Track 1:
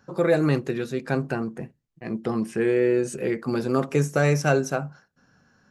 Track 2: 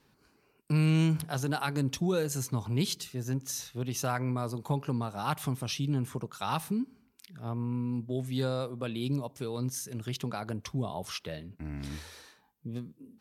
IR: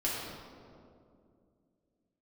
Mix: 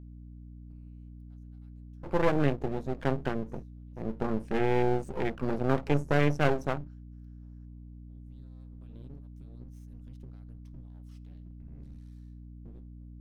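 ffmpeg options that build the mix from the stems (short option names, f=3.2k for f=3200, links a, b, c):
-filter_complex "[0:a]adelay=1950,volume=-1.5dB[a];[1:a]acompressor=threshold=-38dB:ratio=8,volume=-6dB,afade=t=in:st=7.98:d=0.68:silence=0.298538,asplit=2[b][c];[c]volume=-22dB[d];[2:a]atrim=start_sample=2205[e];[d][e]afir=irnorm=-1:irlink=0[f];[a][b][f]amix=inputs=3:normalize=0,afwtdn=0.0178,aeval=exprs='max(val(0),0)':c=same,aeval=exprs='val(0)+0.00562*(sin(2*PI*60*n/s)+sin(2*PI*2*60*n/s)/2+sin(2*PI*3*60*n/s)/3+sin(2*PI*4*60*n/s)/4+sin(2*PI*5*60*n/s)/5)':c=same"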